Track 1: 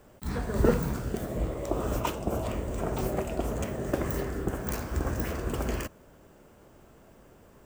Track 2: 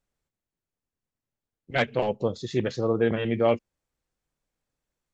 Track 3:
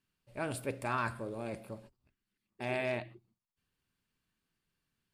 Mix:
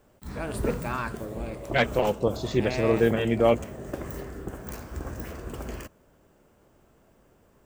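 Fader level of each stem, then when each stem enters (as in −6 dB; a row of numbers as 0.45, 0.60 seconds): −5.5, +1.5, +2.0 decibels; 0.00, 0.00, 0.00 seconds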